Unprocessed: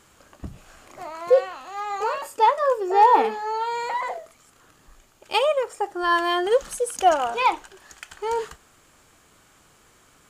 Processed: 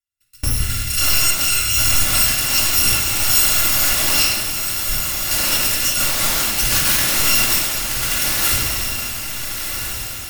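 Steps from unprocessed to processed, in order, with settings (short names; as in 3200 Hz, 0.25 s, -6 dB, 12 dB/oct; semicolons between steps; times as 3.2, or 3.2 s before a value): FFT order left unsorted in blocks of 256 samples; gate -49 dBFS, range -33 dB; band shelf 540 Hz -10 dB 2.4 oct; AGC gain up to 15.5 dB; flange 1.5 Hz, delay 9.1 ms, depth 6.5 ms, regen -69%; sine folder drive 13 dB, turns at -15 dBFS; on a send: diffused feedback echo 1.411 s, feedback 50%, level -3.5 dB; on the sum: shoebox room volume 1600 m³, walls mixed, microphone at 2.4 m; three-band expander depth 40%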